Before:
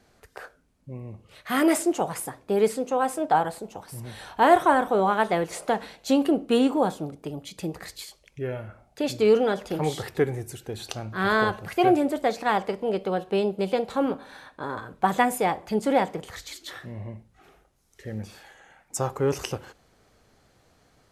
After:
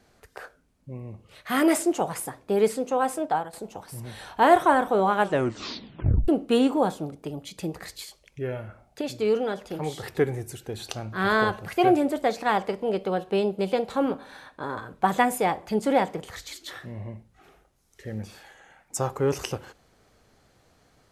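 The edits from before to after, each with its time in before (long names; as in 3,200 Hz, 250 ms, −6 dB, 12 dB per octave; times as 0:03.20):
0:03.16–0:03.53: fade out, to −13.5 dB
0:05.15: tape stop 1.13 s
0:09.01–0:10.03: clip gain −4.5 dB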